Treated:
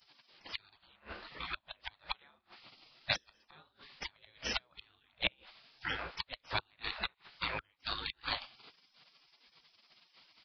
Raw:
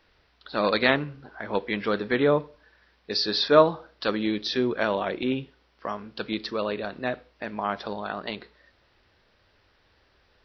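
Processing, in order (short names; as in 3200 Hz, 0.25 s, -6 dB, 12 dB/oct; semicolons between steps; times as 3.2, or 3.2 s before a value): flipped gate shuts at -17 dBFS, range -40 dB; downsampling 11025 Hz; spectral gate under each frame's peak -20 dB weak; gain +13 dB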